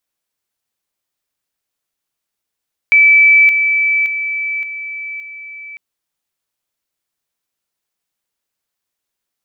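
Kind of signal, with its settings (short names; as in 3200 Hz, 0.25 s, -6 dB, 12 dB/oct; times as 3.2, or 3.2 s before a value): level ladder 2310 Hz -5 dBFS, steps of -6 dB, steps 5, 0.57 s 0.00 s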